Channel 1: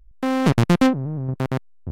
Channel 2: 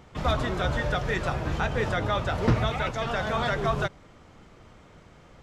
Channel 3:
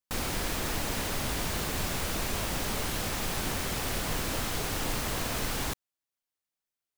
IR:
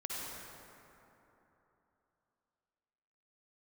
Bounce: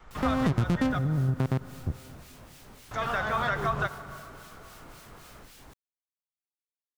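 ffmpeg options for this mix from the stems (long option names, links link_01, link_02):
-filter_complex "[0:a]volume=-3.5dB,asplit=2[link_01][link_02];[link_02]volume=-21dB[link_03];[1:a]equalizer=frequency=1300:width_type=o:width=1.2:gain=9.5,volume=-6dB,asplit=3[link_04][link_05][link_06];[link_04]atrim=end=0.99,asetpts=PTS-STARTPTS,afade=type=out:start_time=0.986:duration=0.004:curve=hsin[link_07];[link_05]atrim=start=0.99:end=2.91,asetpts=PTS-STARTPTS,volume=0[link_08];[link_06]atrim=start=2.91,asetpts=PTS-STARTPTS,afade=type=in:duration=0.004:curve=hsin[link_09];[link_07][link_08][link_09]concat=n=3:v=0:a=1,asplit=2[link_10][link_11];[link_11]volume=-15.5dB[link_12];[2:a]acrossover=split=1800[link_13][link_14];[link_13]aeval=exprs='val(0)*(1-0.7/2+0.7/2*cos(2*PI*3.7*n/s))':channel_layout=same[link_15];[link_14]aeval=exprs='val(0)*(1-0.7/2-0.7/2*cos(2*PI*3.7*n/s))':channel_layout=same[link_16];[link_15][link_16]amix=inputs=2:normalize=0,volume=-16.5dB[link_17];[3:a]atrim=start_sample=2205[link_18];[link_03][link_12]amix=inputs=2:normalize=0[link_19];[link_19][link_18]afir=irnorm=-1:irlink=0[link_20];[link_01][link_10][link_17][link_20]amix=inputs=4:normalize=0,adynamicequalizer=threshold=0.0158:dfrequency=110:dqfactor=0.71:tfrequency=110:tqfactor=0.71:attack=5:release=100:ratio=0.375:range=3.5:mode=boostabove:tftype=bell,acompressor=threshold=-23dB:ratio=6"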